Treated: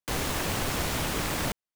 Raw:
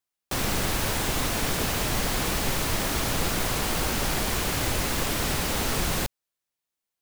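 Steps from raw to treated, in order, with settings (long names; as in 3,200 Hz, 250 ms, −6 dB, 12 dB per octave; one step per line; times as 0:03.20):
change of speed 3.99×
short delay modulated by noise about 3,500 Hz, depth 0.042 ms
level −2 dB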